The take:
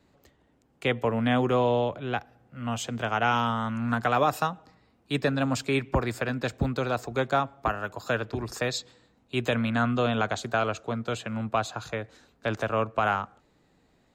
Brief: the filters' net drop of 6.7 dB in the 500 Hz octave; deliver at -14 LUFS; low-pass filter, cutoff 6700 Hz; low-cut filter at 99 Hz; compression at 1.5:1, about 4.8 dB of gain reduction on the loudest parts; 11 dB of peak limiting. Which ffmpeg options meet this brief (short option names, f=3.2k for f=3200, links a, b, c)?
-af "highpass=99,lowpass=6.7k,equalizer=f=500:t=o:g=-8.5,acompressor=threshold=-36dB:ratio=1.5,volume=25dB,alimiter=limit=-3.5dB:level=0:latency=1"